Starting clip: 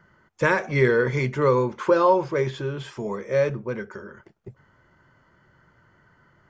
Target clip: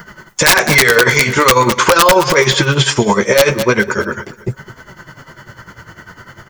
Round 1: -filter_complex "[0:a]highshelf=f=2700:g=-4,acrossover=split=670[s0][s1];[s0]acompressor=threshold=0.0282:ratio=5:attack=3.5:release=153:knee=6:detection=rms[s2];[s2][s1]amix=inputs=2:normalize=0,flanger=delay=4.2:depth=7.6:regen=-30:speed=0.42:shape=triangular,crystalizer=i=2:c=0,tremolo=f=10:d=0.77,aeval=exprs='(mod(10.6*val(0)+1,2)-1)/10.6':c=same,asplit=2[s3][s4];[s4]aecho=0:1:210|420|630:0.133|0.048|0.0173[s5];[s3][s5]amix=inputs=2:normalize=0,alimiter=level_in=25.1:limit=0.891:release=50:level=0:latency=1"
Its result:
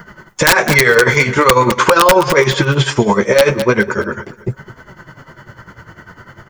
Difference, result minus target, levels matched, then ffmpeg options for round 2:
4 kHz band -3.0 dB
-filter_complex "[0:a]highshelf=f=2700:g=4.5,acrossover=split=670[s0][s1];[s0]acompressor=threshold=0.0282:ratio=5:attack=3.5:release=153:knee=6:detection=rms[s2];[s2][s1]amix=inputs=2:normalize=0,flanger=delay=4.2:depth=7.6:regen=-30:speed=0.42:shape=triangular,crystalizer=i=2:c=0,tremolo=f=10:d=0.77,aeval=exprs='(mod(10.6*val(0)+1,2)-1)/10.6':c=same,asplit=2[s3][s4];[s4]aecho=0:1:210|420|630:0.133|0.048|0.0173[s5];[s3][s5]amix=inputs=2:normalize=0,alimiter=level_in=25.1:limit=0.891:release=50:level=0:latency=1"

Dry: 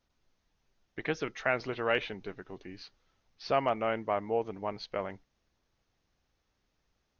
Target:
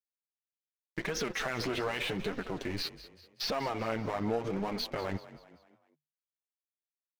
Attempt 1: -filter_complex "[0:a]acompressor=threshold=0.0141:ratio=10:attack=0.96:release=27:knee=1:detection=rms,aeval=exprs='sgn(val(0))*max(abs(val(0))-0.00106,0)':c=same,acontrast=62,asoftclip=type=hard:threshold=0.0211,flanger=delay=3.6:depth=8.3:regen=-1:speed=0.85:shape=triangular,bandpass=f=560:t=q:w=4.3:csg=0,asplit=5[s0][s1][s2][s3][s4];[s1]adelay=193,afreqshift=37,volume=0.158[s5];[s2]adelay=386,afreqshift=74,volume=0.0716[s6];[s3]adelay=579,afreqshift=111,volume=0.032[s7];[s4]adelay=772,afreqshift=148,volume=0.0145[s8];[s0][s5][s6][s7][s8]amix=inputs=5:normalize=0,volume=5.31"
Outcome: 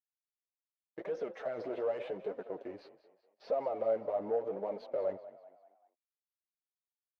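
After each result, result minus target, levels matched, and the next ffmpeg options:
compression: peak gain reduction -7 dB; 500 Hz band +4.5 dB
-filter_complex "[0:a]acompressor=threshold=0.00562:ratio=10:attack=0.96:release=27:knee=1:detection=rms,aeval=exprs='sgn(val(0))*max(abs(val(0))-0.00106,0)':c=same,acontrast=62,asoftclip=type=hard:threshold=0.0211,flanger=delay=3.6:depth=8.3:regen=-1:speed=0.85:shape=triangular,bandpass=f=560:t=q:w=4.3:csg=0,asplit=5[s0][s1][s2][s3][s4];[s1]adelay=193,afreqshift=37,volume=0.158[s5];[s2]adelay=386,afreqshift=74,volume=0.0716[s6];[s3]adelay=579,afreqshift=111,volume=0.032[s7];[s4]adelay=772,afreqshift=148,volume=0.0145[s8];[s0][s5][s6][s7][s8]amix=inputs=5:normalize=0,volume=5.31"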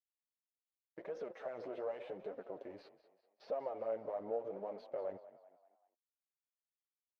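500 Hz band +4.5 dB
-filter_complex "[0:a]acompressor=threshold=0.00562:ratio=10:attack=0.96:release=27:knee=1:detection=rms,aeval=exprs='sgn(val(0))*max(abs(val(0))-0.00106,0)':c=same,acontrast=62,asoftclip=type=hard:threshold=0.0211,flanger=delay=3.6:depth=8.3:regen=-1:speed=0.85:shape=triangular,asplit=5[s0][s1][s2][s3][s4];[s1]adelay=193,afreqshift=37,volume=0.158[s5];[s2]adelay=386,afreqshift=74,volume=0.0716[s6];[s3]adelay=579,afreqshift=111,volume=0.032[s7];[s4]adelay=772,afreqshift=148,volume=0.0145[s8];[s0][s5][s6][s7][s8]amix=inputs=5:normalize=0,volume=5.31"

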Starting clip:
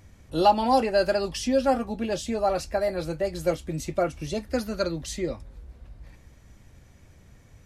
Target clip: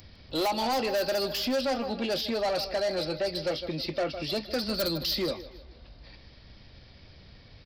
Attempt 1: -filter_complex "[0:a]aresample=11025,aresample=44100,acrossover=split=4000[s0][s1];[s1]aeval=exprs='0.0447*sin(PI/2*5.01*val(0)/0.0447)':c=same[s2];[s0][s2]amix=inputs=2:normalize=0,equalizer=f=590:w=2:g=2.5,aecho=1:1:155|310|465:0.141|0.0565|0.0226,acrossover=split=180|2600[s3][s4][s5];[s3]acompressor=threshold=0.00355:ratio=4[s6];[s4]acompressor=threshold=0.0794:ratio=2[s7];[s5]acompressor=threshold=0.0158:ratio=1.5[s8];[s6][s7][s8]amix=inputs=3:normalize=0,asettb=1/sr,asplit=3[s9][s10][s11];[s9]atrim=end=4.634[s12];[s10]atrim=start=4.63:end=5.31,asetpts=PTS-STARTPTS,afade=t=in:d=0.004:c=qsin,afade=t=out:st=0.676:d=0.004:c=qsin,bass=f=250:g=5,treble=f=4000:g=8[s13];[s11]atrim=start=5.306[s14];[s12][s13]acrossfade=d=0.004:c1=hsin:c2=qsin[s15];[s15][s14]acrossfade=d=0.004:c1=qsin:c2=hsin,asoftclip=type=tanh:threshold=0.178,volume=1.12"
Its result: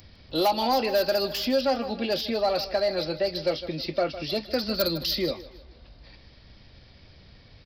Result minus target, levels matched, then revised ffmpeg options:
saturation: distortion -11 dB
-filter_complex "[0:a]aresample=11025,aresample=44100,acrossover=split=4000[s0][s1];[s1]aeval=exprs='0.0447*sin(PI/2*5.01*val(0)/0.0447)':c=same[s2];[s0][s2]amix=inputs=2:normalize=0,equalizer=f=590:w=2:g=2.5,aecho=1:1:155|310|465:0.141|0.0565|0.0226,acrossover=split=180|2600[s3][s4][s5];[s3]acompressor=threshold=0.00355:ratio=4[s6];[s4]acompressor=threshold=0.0794:ratio=2[s7];[s5]acompressor=threshold=0.0158:ratio=1.5[s8];[s6][s7][s8]amix=inputs=3:normalize=0,asettb=1/sr,asplit=3[s9][s10][s11];[s9]atrim=end=4.634[s12];[s10]atrim=start=4.63:end=5.31,asetpts=PTS-STARTPTS,afade=t=in:d=0.004:c=qsin,afade=t=out:st=0.676:d=0.004:c=qsin,bass=f=250:g=5,treble=f=4000:g=8[s13];[s11]atrim=start=5.306[s14];[s12][s13]acrossfade=d=0.004:c1=hsin:c2=qsin[s15];[s15][s14]acrossfade=d=0.004:c1=qsin:c2=hsin,asoftclip=type=tanh:threshold=0.0596,volume=1.12"

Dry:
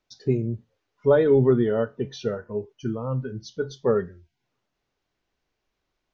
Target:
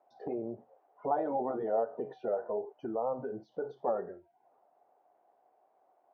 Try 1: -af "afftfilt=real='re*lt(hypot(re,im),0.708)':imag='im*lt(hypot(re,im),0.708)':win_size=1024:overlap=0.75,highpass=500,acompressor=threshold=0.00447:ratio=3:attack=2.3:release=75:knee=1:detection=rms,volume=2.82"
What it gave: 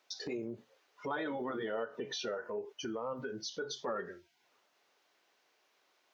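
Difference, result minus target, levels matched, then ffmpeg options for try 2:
1 kHz band -3.0 dB
-af "afftfilt=real='re*lt(hypot(re,im),0.708)':imag='im*lt(hypot(re,im),0.708)':win_size=1024:overlap=0.75,highpass=500,acompressor=threshold=0.00447:ratio=3:attack=2.3:release=75:knee=1:detection=rms,lowpass=f=740:t=q:w=5.8,volume=2.82"

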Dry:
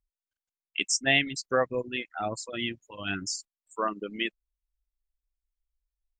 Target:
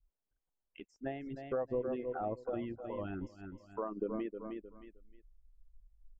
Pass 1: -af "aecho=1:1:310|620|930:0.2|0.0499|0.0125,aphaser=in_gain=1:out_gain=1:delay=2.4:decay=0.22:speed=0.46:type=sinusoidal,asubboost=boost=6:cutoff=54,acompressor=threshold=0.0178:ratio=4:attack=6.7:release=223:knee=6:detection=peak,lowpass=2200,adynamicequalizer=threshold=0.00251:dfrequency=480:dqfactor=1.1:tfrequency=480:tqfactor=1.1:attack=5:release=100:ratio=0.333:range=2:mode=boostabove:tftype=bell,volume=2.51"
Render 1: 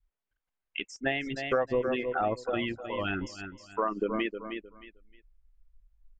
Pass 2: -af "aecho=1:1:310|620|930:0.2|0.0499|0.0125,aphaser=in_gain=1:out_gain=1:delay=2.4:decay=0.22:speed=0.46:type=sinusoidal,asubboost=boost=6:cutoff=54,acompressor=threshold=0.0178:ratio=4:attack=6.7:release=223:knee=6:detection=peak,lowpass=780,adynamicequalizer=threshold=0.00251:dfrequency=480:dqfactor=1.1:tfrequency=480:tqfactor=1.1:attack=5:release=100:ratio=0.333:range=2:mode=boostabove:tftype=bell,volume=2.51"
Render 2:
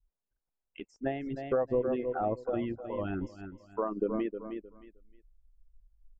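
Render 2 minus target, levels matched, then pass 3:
compression: peak gain reduction -6.5 dB
-af "aecho=1:1:310|620|930:0.2|0.0499|0.0125,aphaser=in_gain=1:out_gain=1:delay=2.4:decay=0.22:speed=0.46:type=sinusoidal,asubboost=boost=6:cutoff=54,acompressor=threshold=0.00668:ratio=4:attack=6.7:release=223:knee=6:detection=peak,lowpass=780,adynamicequalizer=threshold=0.00251:dfrequency=480:dqfactor=1.1:tfrequency=480:tqfactor=1.1:attack=5:release=100:ratio=0.333:range=2:mode=boostabove:tftype=bell,volume=2.51"

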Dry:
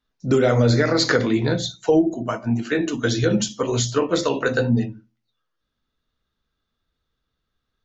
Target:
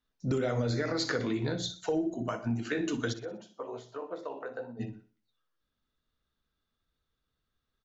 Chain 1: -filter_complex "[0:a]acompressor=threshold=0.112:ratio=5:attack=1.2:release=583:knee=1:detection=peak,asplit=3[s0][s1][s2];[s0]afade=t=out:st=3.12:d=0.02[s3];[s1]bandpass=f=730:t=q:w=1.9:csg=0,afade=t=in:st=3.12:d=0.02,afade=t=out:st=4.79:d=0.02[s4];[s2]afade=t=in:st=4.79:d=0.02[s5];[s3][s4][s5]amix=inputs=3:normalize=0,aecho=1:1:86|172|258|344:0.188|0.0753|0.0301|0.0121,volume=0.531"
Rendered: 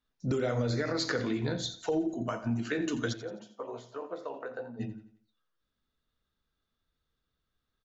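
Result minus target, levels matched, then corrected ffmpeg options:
echo 25 ms late
-filter_complex "[0:a]acompressor=threshold=0.112:ratio=5:attack=1.2:release=583:knee=1:detection=peak,asplit=3[s0][s1][s2];[s0]afade=t=out:st=3.12:d=0.02[s3];[s1]bandpass=f=730:t=q:w=1.9:csg=0,afade=t=in:st=3.12:d=0.02,afade=t=out:st=4.79:d=0.02[s4];[s2]afade=t=in:st=4.79:d=0.02[s5];[s3][s4][s5]amix=inputs=3:normalize=0,aecho=1:1:61|122|183|244:0.188|0.0753|0.0301|0.0121,volume=0.531"

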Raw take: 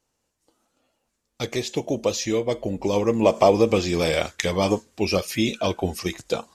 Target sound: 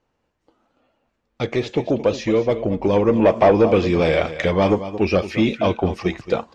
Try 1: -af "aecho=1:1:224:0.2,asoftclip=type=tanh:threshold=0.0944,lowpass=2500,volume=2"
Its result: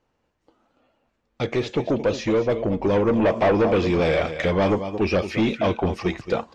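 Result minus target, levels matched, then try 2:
saturation: distortion +7 dB
-af "aecho=1:1:224:0.2,asoftclip=type=tanh:threshold=0.237,lowpass=2500,volume=2"

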